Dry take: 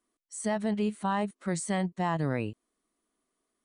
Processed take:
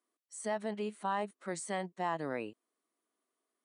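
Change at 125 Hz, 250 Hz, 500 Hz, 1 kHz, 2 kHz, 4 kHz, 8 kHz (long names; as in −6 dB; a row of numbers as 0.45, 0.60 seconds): −15.0, −11.0, −4.0, −3.5, −4.5, −5.5, −6.5 decibels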